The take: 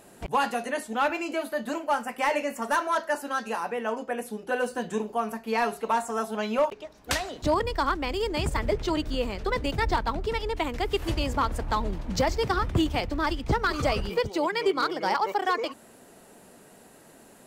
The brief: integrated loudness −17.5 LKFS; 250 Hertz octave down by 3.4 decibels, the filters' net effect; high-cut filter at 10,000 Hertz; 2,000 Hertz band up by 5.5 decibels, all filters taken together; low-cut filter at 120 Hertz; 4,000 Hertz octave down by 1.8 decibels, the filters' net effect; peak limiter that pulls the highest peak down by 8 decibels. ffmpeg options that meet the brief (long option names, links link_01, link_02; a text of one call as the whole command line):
ffmpeg -i in.wav -af "highpass=120,lowpass=10000,equalizer=frequency=250:width_type=o:gain=-4.5,equalizer=frequency=2000:width_type=o:gain=8.5,equalizer=frequency=4000:width_type=o:gain=-6.5,volume=12dB,alimiter=limit=-6.5dB:level=0:latency=1" out.wav